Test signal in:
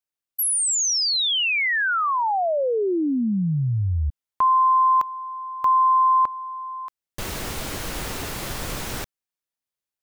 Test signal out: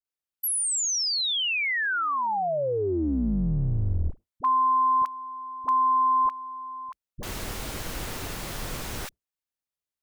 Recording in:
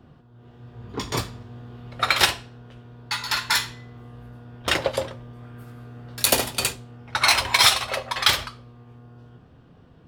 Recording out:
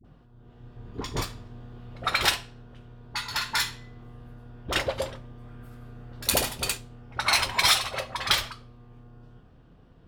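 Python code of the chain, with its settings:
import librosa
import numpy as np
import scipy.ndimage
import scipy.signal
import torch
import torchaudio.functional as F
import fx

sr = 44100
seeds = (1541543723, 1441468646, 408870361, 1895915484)

y = fx.octave_divider(x, sr, octaves=2, level_db=-2.0)
y = fx.dispersion(y, sr, late='highs', ms=47.0, hz=530.0)
y = y * librosa.db_to_amplitude(-4.5)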